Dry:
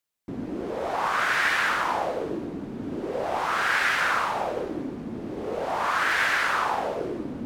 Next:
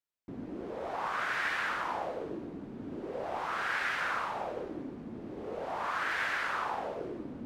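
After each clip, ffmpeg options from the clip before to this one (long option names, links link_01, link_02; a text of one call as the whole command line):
ffmpeg -i in.wav -af "highshelf=frequency=5300:gain=-7.5,volume=-8.5dB" out.wav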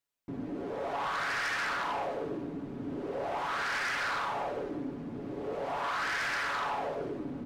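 ffmpeg -i in.wav -filter_complex "[0:a]aecho=1:1:7.1:0.43,asplit=2[link_01][link_02];[link_02]aeval=exprs='0.112*sin(PI/2*3.55*val(0)/0.112)':channel_layout=same,volume=-7dB[link_03];[link_01][link_03]amix=inputs=2:normalize=0,volume=-7.5dB" out.wav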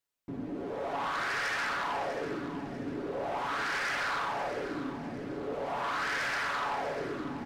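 ffmpeg -i in.wav -af "aecho=1:1:645|1290|1935|2580:0.251|0.0955|0.0363|0.0138" out.wav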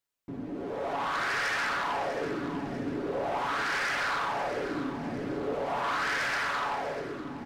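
ffmpeg -i in.wav -af "alimiter=level_in=5.5dB:limit=-24dB:level=0:latency=1:release=312,volume=-5.5dB,dynaudnorm=framelen=190:gausssize=9:maxgain=5dB" out.wav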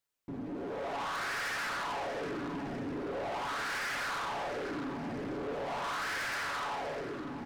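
ffmpeg -i in.wav -af "asoftclip=type=tanh:threshold=-33.5dB" out.wav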